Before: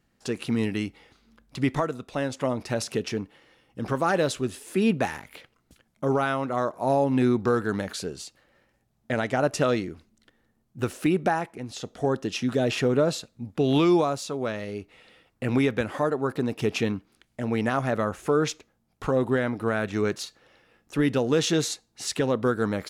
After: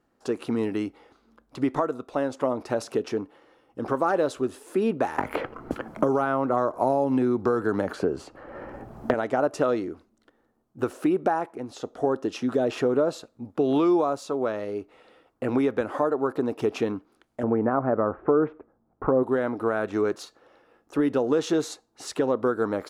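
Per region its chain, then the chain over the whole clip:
0:05.18–0:09.14: low-shelf EQ 140 Hz +9 dB + notch filter 3,700 Hz, Q 14 + multiband upward and downward compressor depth 100%
0:17.43–0:19.23: low-pass filter 1,700 Hz 24 dB per octave + low-shelf EQ 450 Hz +6.5 dB
whole clip: flat-topped bell 610 Hz +11 dB 2.8 octaves; downward compressor 2 to 1, threshold −15 dBFS; level −6.5 dB

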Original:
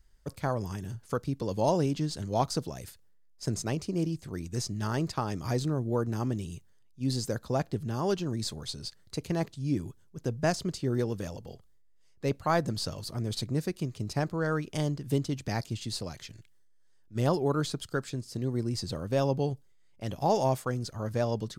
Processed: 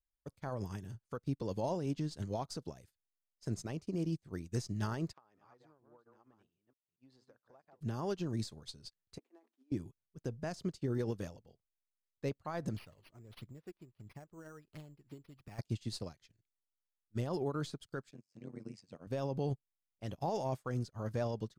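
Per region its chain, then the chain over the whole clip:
0:05.13–0:07.81: delay that plays each chunk backwards 229 ms, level −7 dB + resonant band-pass 1,100 Hz, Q 0.91 + downward compressor 8 to 1, threshold −40 dBFS
0:09.18–0:09.72: running median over 9 samples + compressor whose output falls as the input rises −34 dBFS, ratio −0.5 + Chebyshev high-pass with heavy ripple 230 Hz, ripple 6 dB
0:12.77–0:15.59: bad sample-rate conversion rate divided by 6×, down none, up hold + downward compressor 3 to 1, threshold −33 dBFS + flanger 1.5 Hz, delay 0.4 ms, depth 3.1 ms, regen +52%
0:18.11–0:19.07: amplitude modulation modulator 94 Hz, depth 90% + loudspeaker in its box 160–9,000 Hz, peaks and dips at 370 Hz −5 dB, 2,400 Hz +8 dB, 3,900 Hz −7 dB
whole clip: high-shelf EQ 5,500 Hz −4 dB; brickwall limiter −26 dBFS; expander for the loud parts 2.5 to 1, over −53 dBFS; level +1 dB

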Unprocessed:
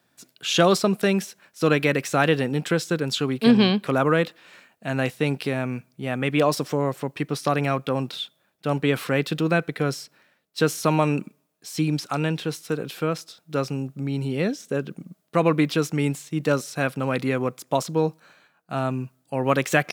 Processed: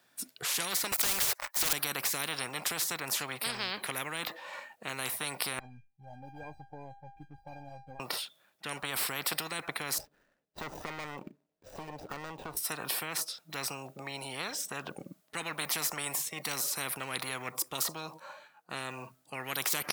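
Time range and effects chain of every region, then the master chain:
0:00.92–0:01.73: high-pass filter 1,000 Hz + leveller curve on the samples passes 5
0:05.59–0:08.00: running median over 41 samples + spectral tilt −3.5 dB per octave + tuned comb filter 800 Hz, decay 0.26 s, mix 100%
0:09.98–0:12.57: running median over 41 samples + hard clipping −19.5 dBFS + downward compressor 3 to 1, threshold −35 dBFS
whole clip: noise reduction from a noise print of the clip's start 15 dB; low-shelf EQ 420 Hz −11.5 dB; every bin compressed towards the loudest bin 10 to 1; level −2.5 dB

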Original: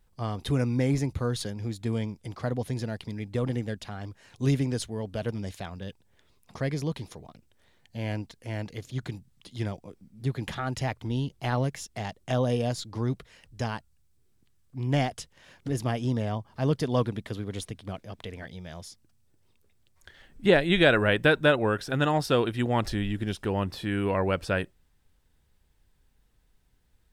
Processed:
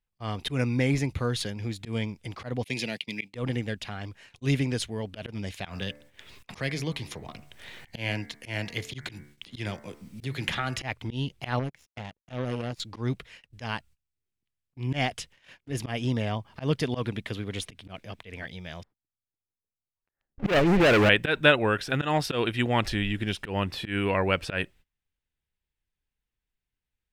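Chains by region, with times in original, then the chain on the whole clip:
0:02.64–0:03.34: high-pass filter 150 Hz 24 dB per octave + downward expander −39 dBFS + high shelf with overshoot 1,900 Hz +6.5 dB, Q 3
0:05.65–0:10.82: high-shelf EQ 2,400 Hz +6 dB + hum removal 73.05 Hz, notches 31 + multiband upward and downward compressor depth 70%
0:11.59–0:12.80: tilt shelving filter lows +5.5 dB, about 760 Hz + downward compressor 2 to 1, threshold −28 dBFS + power curve on the samples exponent 2
0:18.83–0:21.09: low-pass filter 1,300 Hz 24 dB per octave + leveller curve on the samples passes 5 + downward compressor 3 to 1, threshold −22 dBFS
whole clip: volume swells 111 ms; noise gate −53 dBFS, range −21 dB; parametric band 2,500 Hz +9.5 dB 1.2 octaves

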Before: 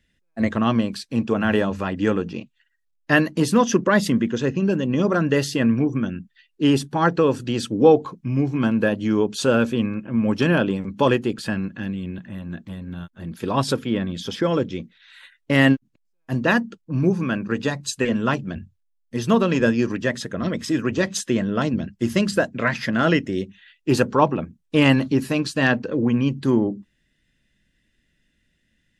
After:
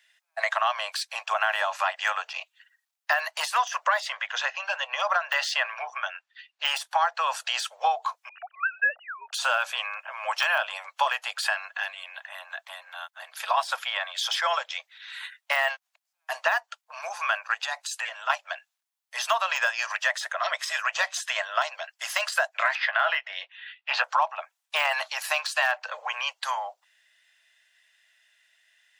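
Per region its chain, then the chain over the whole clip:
0:04.00–0:06.67: low-pass filter 4,800 Hz + hard clipping −9.5 dBFS
0:08.29–0:09.33: three sine waves on the formant tracks + phaser with its sweep stopped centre 1,500 Hz, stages 8
0:17.54–0:18.30: notch filter 1,100 Hz, Q 20 + downward compressor 4 to 1, threshold −29 dBFS
0:22.75–0:24.04: low-pass filter 3,700 Hz 24 dB per octave + double-tracking delay 16 ms −11 dB
whole clip: de-essing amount 80%; Butterworth high-pass 660 Hz 72 dB per octave; downward compressor 5 to 1, threshold −29 dBFS; level +8 dB

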